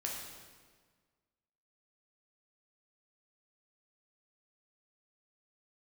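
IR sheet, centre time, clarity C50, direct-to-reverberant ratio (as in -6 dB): 69 ms, 1.5 dB, -2.0 dB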